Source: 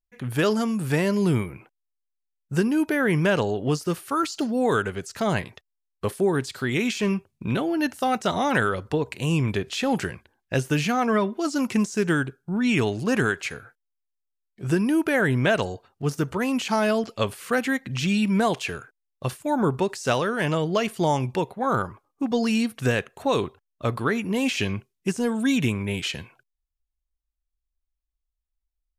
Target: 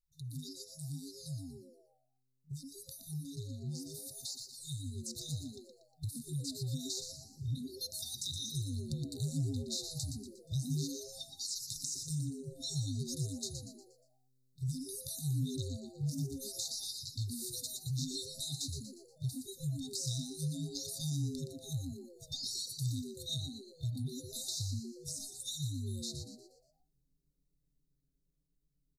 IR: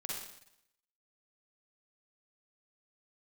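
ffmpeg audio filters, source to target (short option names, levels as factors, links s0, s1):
-filter_complex "[0:a]afftfilt=real='re*(1-between(b*sr/4096,160,3600))':imag='im*(1-between(b*sr/4096,160,3600))':win_size=4096:overlap=0.75,acompressor=threshold=0.00398:ratio=2.5,asplit=6[s0][s1][s2][s3][s4][s5];[s1]adelay=119,afreqshift=130,volume=0.422[s6];[s2]adelay=238,afreqshift=260,volume=0.178[s7];[s3]adelay=357,afreqshift=390,volume=0.0741[s8];[s4]adelay=476,afreqshift=520,volume=0.0313[s9];[s5]adelay=595,afreqshift=650,volume=0.0132[s10];[s0][s6][s7][s8][s9][s10]amix=inputs=6:normalize=0,dynaudnorm=f=780:g=13:m=2.24"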